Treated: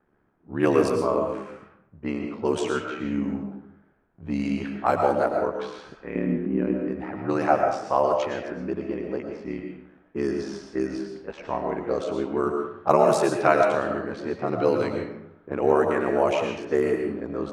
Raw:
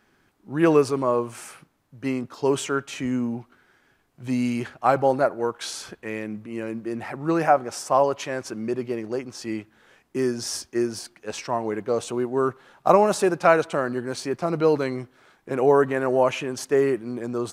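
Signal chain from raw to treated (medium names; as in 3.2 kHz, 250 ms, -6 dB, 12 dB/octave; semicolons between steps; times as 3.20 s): level-controlled noise filter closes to 1.1 kHz, open at -15.5 dBFS; 6.15–6.74 s: peaking EQ 260 Hz +14 dB 1.1 oct; ring modulator 36 Hz; reverberation RT60 0.75 s, pre-delay 75 ms, DRR 3 dB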